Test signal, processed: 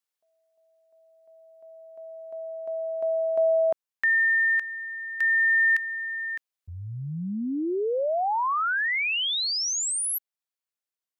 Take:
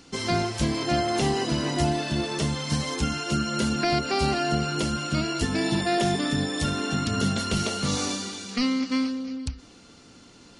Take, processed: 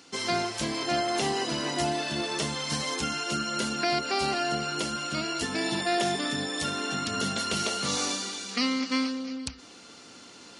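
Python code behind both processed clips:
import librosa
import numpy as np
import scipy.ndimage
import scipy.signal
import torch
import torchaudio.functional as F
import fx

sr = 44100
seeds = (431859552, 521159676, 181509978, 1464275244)

y = fx.highpass(x, sr, hz=470.0, slope=6)
y = fx.rider(y, sr, range_db=5, speed_s=2.0)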